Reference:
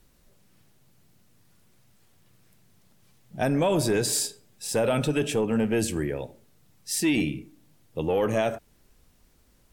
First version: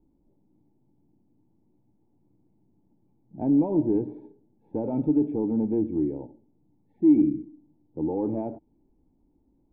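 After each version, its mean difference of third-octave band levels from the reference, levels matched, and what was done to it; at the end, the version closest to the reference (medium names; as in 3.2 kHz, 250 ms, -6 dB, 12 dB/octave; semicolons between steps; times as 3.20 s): 14.0 dB: cascade formant filter u; trim +8 dB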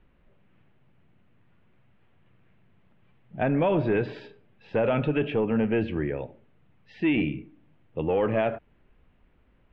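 6.0 dB: steep low-pass 2.9 kHz 36 dB/octave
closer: second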